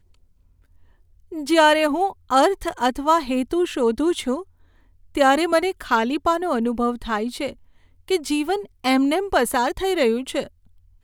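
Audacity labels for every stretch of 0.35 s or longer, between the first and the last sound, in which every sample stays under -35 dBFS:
4.420000	5.150000	silence
7.530000	8.080000	silence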